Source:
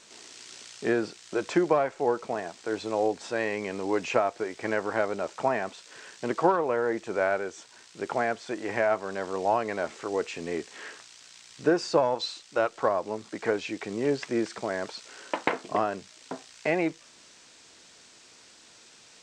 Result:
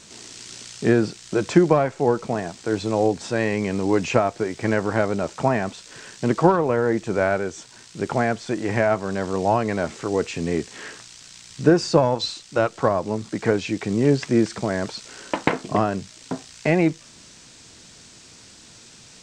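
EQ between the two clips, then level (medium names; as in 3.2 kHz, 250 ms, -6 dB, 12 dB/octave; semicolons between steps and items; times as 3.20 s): tone controls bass +15 dB, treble +4 dB; +4.0 dB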